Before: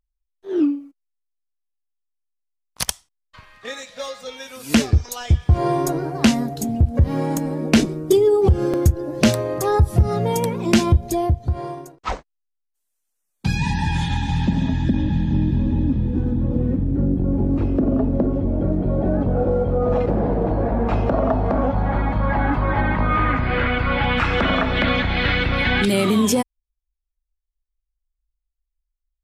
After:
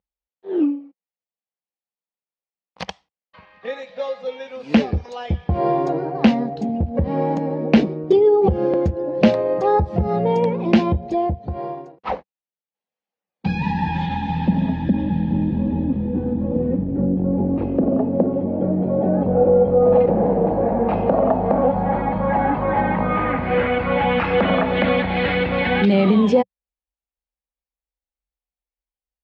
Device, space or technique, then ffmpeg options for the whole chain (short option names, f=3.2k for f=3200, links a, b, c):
guitar cabinet: -filter_complex "[0:a]asettb=1/sr,asplit=3[a][b][c];[a]atrim=end=17.894[d];[b]atrim=start=17.89:end=19.22,asetpts=PTS-STARTPTS,afade=t=in:d=0.004:c=qsin,afade=t=out:st=1.326:d=0.004:c=qsin,highpass=98[e];[c]atrim=start=19.216[f];[d][e]acrossfade=d=0.004:c1=hsin:c2=qsin[g];[g][f]acrossfade=d=0.004:c1=qsin:c2=hsin,highpass=90,equalizer=f=120:t=q:w=4:g=-9,equalizer=f=190:t=q:w=4:g=8,equalizer=f=510:t=q:w=4:g=9,equalizer=f=800:t=q:w=4:g=7,equalizer=f=1.4k:t=q:w=4:g=-4,equalizer=f=3.5k:t=q:w=4:g=-4,lowpass=f=3.8k:w=0.5412,lowpass=f=3.8k:w=1.3066,volume=-1.5dB"